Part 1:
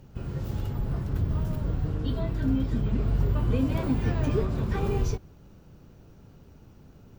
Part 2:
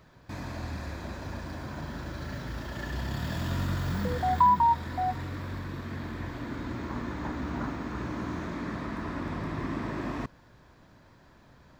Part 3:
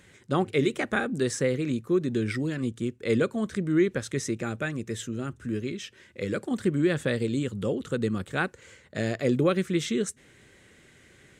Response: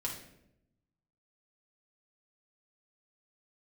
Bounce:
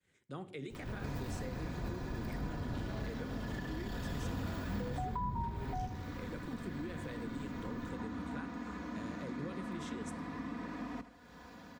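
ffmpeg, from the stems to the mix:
-filter_complex "[0:a]acompressor=threshold=-28dB:ratio=6,asoftclip=type=hard:threshold=-38.5dB,adelay=700,volume=3dB,asplit=2[a][b];[b]volume=-7.5dB[c];[1:a]highpass=81,aecho=1:1:4.1:0.94,acompressor=mode=upward:threshold=-30dB:ratio=2.5,adelay=750,volume=-10dB,asplit=2[d][e];[e]volume=-15dB[f];[2:a]agate=range=-33dB:threshold=-50dB:ratio=3:detection=peak,volume=-15.5dB,asplit=2[g][h];[h]volume=-13.5dB[i];[a][g]amix=inputs=2:normalize=0,alimiter=level_in=12dB:limit=-24dB:level=0:latency=1:release=154,volume=-12dB,volume=0dB[j];[3:a]atrim=start_sample=2205[k];[i][k]afir=irnorm=-1:irlink=0[l];[c][f]amix=inputs=2:normalize=0,aecho=0:1:78|156|234|312|390|468:1|0.46|0.212|0.0973|0.0448|0.0206[m];[d][j][l][m]amix=inputs=4:normalize=0,acrossover=split=220[n][o];[o]acompressor=threshold=-41dB:ratio=4[p];[n][p]amix=inputs=2:normalize=0"

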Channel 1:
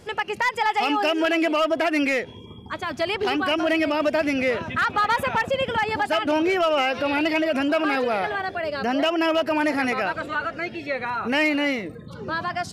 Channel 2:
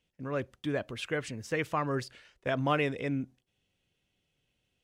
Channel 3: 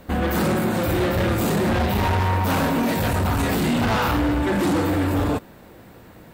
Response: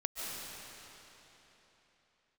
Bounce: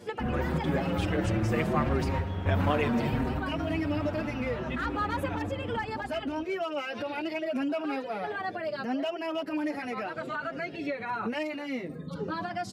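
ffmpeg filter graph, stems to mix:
-filter_complex "[0:a]highpass=160,lowshelf=f=490:g=8.5,acompressor=threshold=-26dB:ratio=6,volume=0dB[a];[1:a]volume=2dB,asplit=2[b][c];[2:a]bass=f=250:g=7,treble=f=4k:g=-15,adelay=100,volume=-4dB,asplit=2[d][e];[e]volume=-15.5dB[f];[c]apad=whole_len=283982[g];[d][g]sidechaingate=range=-33dB:threshold=-49dB:ratio=16:detection=peak[h];[a][h]amix=inputs=2:normalize=0,alimiter=limit=-22dB:level=0:latency=1:release=57,volume=0dB[i];[3:a]atrim=start_sample=2205[j];[f][j]afir=irnorm=-1:irlink=0[k];[b][i][k]amix=inputs=3:normalize=0,asplit=2[l][m];[m]adelay=6.4,afreqshift=0.71[n];[l][n]amix=inputs=2:normalize=1"

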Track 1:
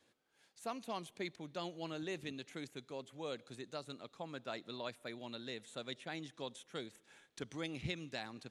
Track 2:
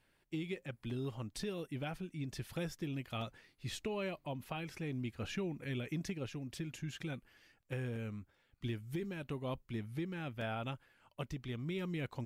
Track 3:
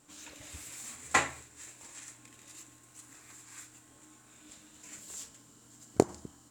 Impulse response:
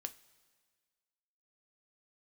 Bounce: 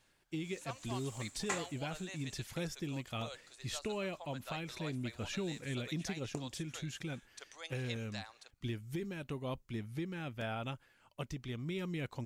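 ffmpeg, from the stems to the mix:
-filter_complex "[0:a]highpass=f=580:w=0.5412,highpass=f=580:w=1.3066,volume=-2.5dB[a];[1:a]volume=0dB[b];[2:a]adelay=350,volume=-13dB,afade=t=out:st=2.18:d=0.26:silence=0.446684[c];[a][b][c]amix=inputs=3:normalize=0,equalizer=f=6.6k:t=o:w=1.1:g=5.5"

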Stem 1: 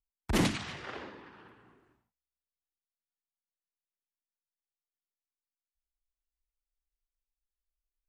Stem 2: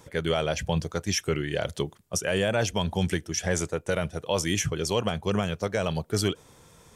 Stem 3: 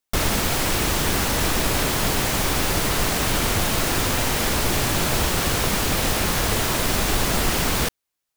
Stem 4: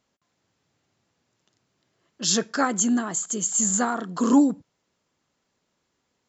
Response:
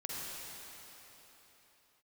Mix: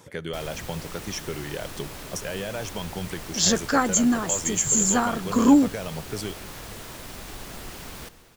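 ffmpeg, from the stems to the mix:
-filter_complex "[1:a]highpass=92,acompressor=threshold=-34dB:ratio=2.5,volume=1dB,asplit=2[a][b];[b]volume=-20.5dB[c];[2:a]adelay=200,volume=-19dB,asplit=2[d][e];[e]volume=-12dB[f];[3:a]adelay=1150,volume=1.5dB[g];[4:a]atrim=start_sample=2205[h];[c][f]amix=inputs=2:normalize=0[i];[i][h]afir=irnorm=-1:irlink=0[j];[a][d][g][j]amix=inputs=4:normalize=0"

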